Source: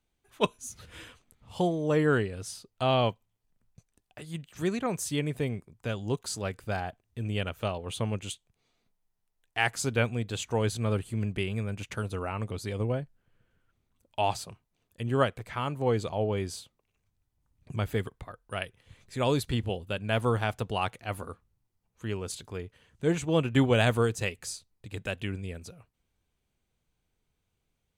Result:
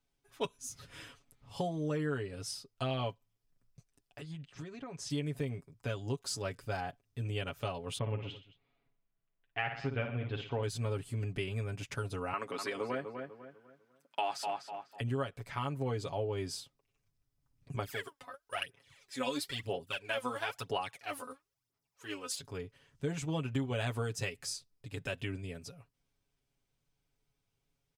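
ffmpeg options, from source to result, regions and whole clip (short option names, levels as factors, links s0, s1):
-filter_complex "[0:a]asettb=1/sr,asplit=3[s0][s1][s2];[s0]atrim=end=4.214[s3];[s1]atrim=start=4.21:end=5.1,asetpts=PTS-STARTPTS,afade=t=in:d=0.004:c=qsin,afade=t=out:st=0.886:d=0.004:c=qsin,lowpass=4900,acompressor=threshold=0.0141:ratio=10:attack=3.2:release=140:knee=1:detection=peak[s4];[s2]atrim=start=5.096[s5];[s3][s4]acrossfade=d=0.004:c1=hsin:c2=qsin[s6];[s6][s5]acrossfade=d=0.004:c1=qsin:c2=hsin,asettb=1/sr,asplit=3[s7][s8][s9];[s7]atrim=end=7.984[s10];[s8]atrim=start=7.98:end=10.63,asetpts=PTS-STARTPTS,afade=t=in:d=0.004:c=qsin,afade=t=out:st=2.646:d=0.004:c=qsin,lowpass=f=3000:w=0.5412,lowpass=f=3000:w=1.3066,aecho=1:1:56|121|220:0.398|0.158|0.112,atrim=end_sample=116865[s11];[s9]atrim=start=10.626[s12];[s10][s11]acrossfade=d=0.004:c1=hsin:c2=qsin[s13];[s13][s12]acrossfade=d=0.004:c1=qsin:c2=hsin,asettb=1/sr,asplit=3[s14][s15][s16];[s14]atrim=end=12.334[s17];[s15]atrim=start=12.33:end=15.01,asetpts=PTS-STARTPTS,afade=t=in:d=0.004:c=qsin,afade=t=out:st=2.676:d=0.004:c=qsin,highpass=f=200:w=0.5412,highpass=f=200:w=1.3066,equalizer=f=1500:t=o:w=1.7:g=10.5,asplit=2[s18][s19];[s19]adelay=249,lowpass=f=2400:p=1,volume=0.398,asplit=2[s20][s21];[s21]adelay=249,lowpass=f=2400:p=1,volume=0.36,asplit=2[s22][s23];[s23]adelay=249,lowpass=f=2400:p=1,volume=0.36,asplit=2[s24][s25];[s25]adelay=249,lowpass=f=2400:p=1,volume=0.36[s26];[s18][s20][s22][s24][s26]amix=inputs=5:normalize=0,atrim=end_sample=118188[s27];[s16]atrim=start=15.006[s28];[s17][s27]acrossfade=d=0.004:c1=hsin:c2=qsin[s29];[s29][s28]acrossfade=d=0.004:c1=qsin:c2=hsin,asettb=1/sr,asplit=3[s30][s31][s32];[s30]atrim=end=17.764[s33];[s31]atrim=start=17.76:end=22.39,asetpts=PTS-STARTPTS,afade=t=in:d=0.004:c=qsin,afade=t=out:st=4.626:d=0.004:c=qsin,highpass=f=720:p=1,aphaser=in_gain=1:out_gain=1:delay=4:decay=0.72:speed=1:type=sinusoidal[s34];[s32]atrim=start=22.386[s35];[s33][s34]acrossfade=d=0.004:c1=hsin:c2=qsin[s36];[s36][s35]acrossfade=d=0.004:c1=qsin:c2=hsin,equalizer=f=5200:t=o:w=0.21:g=7.5,aecho=1:1:7.2:0.73,acompressor=threshold=0.0501:ratio=6,volume=0.562"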